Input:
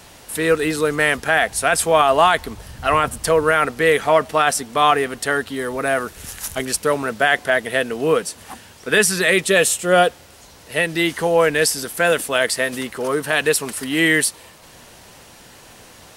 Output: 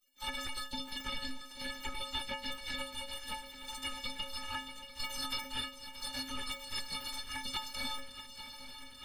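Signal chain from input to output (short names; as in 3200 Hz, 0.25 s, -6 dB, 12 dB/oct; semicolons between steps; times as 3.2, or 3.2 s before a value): harmoniser -12 st -14 dB, +3 st -12 dB, +7 st -10 dB; spectral gate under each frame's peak -25 dB weak; tilt -3 dB/oct; granular stretch 0.56×, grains 41 ms; metallic resonator 260 Hz, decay 0.42 s, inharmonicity 0.03; compressor, threshold -50 dBFS, peak gain reduction 8.5 dB; bell 4000 Hz +7.5 dB 1.6 oct; swung echo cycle 0.839 s, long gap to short 3:1, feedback 77%, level -14 dB; gain +13 dB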